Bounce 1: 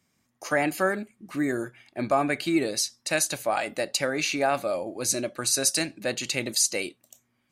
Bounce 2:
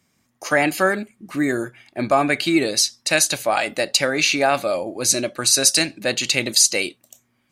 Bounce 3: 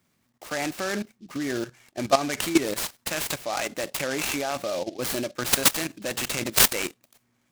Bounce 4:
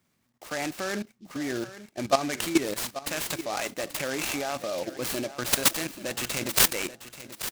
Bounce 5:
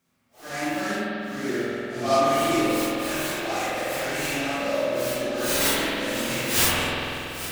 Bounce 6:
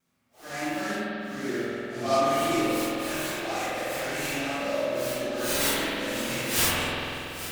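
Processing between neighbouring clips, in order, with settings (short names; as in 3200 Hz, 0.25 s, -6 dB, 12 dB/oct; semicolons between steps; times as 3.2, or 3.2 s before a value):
dynamic EQ 3700 Hz, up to +5 dB, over -41 dBFS, Q 0.72; gain +5.5 dB
level quantiser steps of 14 dB; noise-modulated delay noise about 4000 Hz, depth 0.058 ms
feedback echo 0.834 s, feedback 31%, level -14 dB; gain -2.5 dB
phase scrambler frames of 0.2 s; spring tank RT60 2.9 s, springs 47 ms, chirp 60 ms, DRR -4 dB
vibrato 0.44 Hz 12 cents; gain -3 dB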